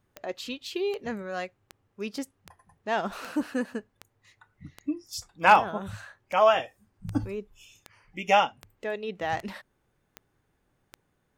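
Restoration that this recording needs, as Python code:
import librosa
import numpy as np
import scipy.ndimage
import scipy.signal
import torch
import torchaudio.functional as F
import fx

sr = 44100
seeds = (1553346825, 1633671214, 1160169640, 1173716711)

y = fx.fix_declip(x, sr, threshold_db=-7.5)
y = fx.fix_declick_ar(y, sr, threshold=10.0)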